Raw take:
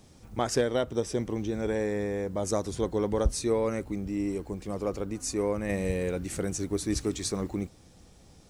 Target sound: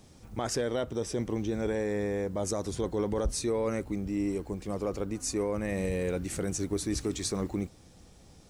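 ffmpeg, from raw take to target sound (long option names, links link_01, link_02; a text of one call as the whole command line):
ffmpeg -i in.wav -af "alimiter=limit=-21dB:level=0:latency=1:release=17" out.wav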